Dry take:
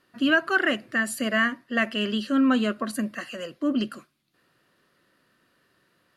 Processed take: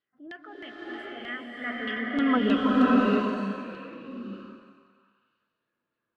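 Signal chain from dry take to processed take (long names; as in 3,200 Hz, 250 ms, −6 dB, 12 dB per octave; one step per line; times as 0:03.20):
source passing by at 0:02.31, 26 m/s, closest 6.1 metres
auto-filter low-pass saw down 3.2 Hz 340–4,000 Hz
transient designer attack −4 dB, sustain +4 dB
echo through a band-pass that steps 186 ms, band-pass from 470 Hz, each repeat 0.7 octaves, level −9 dB
slow-attack reverb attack 640 ms, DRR −5.5 dB
level −4 dB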